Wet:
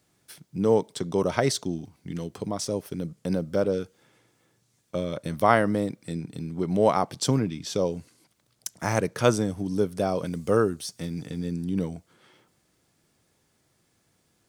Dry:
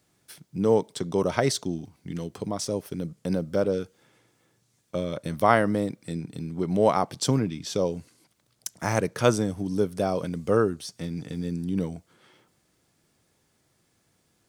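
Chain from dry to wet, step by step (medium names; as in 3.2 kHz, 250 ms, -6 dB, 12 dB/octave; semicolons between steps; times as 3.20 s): 10.25–11.28 s: treble shelf 5.6 kHz -> 8.3 kHz +7 dB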